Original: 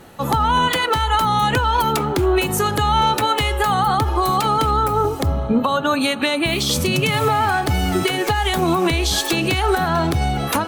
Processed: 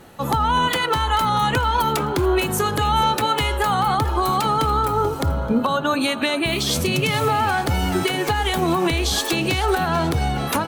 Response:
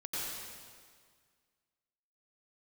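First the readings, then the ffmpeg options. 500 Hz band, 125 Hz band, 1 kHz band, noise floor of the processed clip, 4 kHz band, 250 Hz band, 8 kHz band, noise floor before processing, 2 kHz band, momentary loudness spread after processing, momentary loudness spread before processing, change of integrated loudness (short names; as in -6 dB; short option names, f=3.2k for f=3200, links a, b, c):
-2.0 dB, -2.0 dB, -2.0 dB, -27 dBFS, -2.0 dB, -2.0 dB, -2.0 dB, -25 dBFS, -2.0 dB, 2 LU, 3 LU, -2.0 dB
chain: -filter_complex "[0:a]asplit=5[a][b][c][d][e];[b]adelay=436,afreqshift=83,volume=-15.5dB[f];[c]adelay=872,afreqshift=166,volume=-23.2dB[g];[d]adelay=1308,afreqshift=249,volume=-31dB[h];[e]adelay=1744,afreqshift=332,volume=-38.7dB[i];[a][f][g][h][i]amix=inputs=5:normalize=0,volume=-2dB"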